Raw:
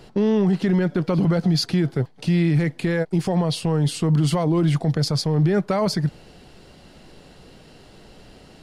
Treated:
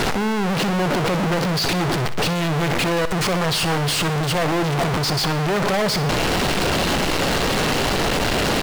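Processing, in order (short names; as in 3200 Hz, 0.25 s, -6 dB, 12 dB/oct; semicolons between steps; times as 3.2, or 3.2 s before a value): infinite clipping; feedback echo 61 ms, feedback 52%, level -15 dB; overdrive pedal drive 5 dB, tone 3000 Hz, clips at -19 dBFS; gain +5.5 dB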